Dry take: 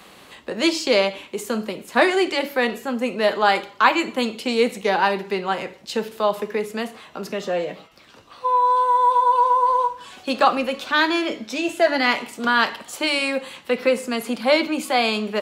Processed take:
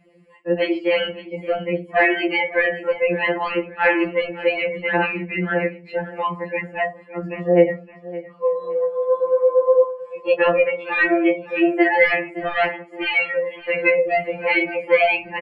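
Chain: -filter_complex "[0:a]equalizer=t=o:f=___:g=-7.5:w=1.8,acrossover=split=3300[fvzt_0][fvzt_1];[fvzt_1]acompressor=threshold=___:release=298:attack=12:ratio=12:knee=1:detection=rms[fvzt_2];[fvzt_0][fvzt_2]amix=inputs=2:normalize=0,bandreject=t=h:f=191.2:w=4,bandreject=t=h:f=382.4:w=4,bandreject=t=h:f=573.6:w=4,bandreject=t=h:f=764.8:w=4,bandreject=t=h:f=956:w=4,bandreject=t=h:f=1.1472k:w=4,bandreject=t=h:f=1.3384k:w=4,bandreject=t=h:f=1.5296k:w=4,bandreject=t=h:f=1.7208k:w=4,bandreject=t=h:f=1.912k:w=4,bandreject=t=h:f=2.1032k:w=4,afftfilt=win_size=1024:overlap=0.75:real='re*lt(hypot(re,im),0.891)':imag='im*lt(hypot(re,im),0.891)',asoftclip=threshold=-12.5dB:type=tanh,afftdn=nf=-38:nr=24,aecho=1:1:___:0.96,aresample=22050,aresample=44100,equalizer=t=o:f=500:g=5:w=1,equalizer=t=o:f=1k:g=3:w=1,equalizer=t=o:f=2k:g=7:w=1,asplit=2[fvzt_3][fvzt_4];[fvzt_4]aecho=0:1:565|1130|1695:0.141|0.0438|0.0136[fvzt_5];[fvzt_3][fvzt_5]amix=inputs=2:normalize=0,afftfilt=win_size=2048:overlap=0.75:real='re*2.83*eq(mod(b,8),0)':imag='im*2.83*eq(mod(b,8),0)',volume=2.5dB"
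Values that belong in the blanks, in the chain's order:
5.1k, -50dB, 5.4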